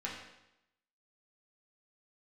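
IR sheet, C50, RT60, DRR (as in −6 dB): 3.5 dB, 0.85 s, −5.0 dB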